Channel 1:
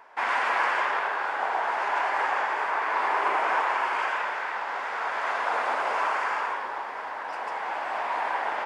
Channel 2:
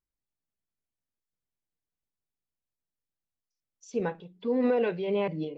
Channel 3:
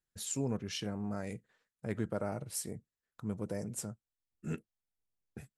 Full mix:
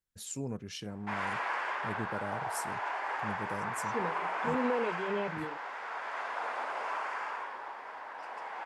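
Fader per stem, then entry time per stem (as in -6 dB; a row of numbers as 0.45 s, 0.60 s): -9.5 dB, -6.5 dB, -3.0 dB; 0.90 s, 0.00 s, 0.00 s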